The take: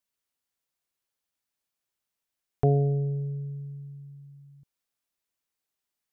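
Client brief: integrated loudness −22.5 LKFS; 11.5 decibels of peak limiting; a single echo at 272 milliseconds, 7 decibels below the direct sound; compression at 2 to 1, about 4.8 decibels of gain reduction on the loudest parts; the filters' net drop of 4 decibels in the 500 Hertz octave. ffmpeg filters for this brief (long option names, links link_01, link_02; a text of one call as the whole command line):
ffmpeg -i in.wav -af "equalizer=frequency=500:width_type=o:gain=-5,acompressor=threshold=-28dB:ratio=2,alimiter=level_in=3dB:limit=-24dB:level=0:latency=1,volume=-3dB,aecho=1:1:272:0.447,volume=13.5dB" out.wav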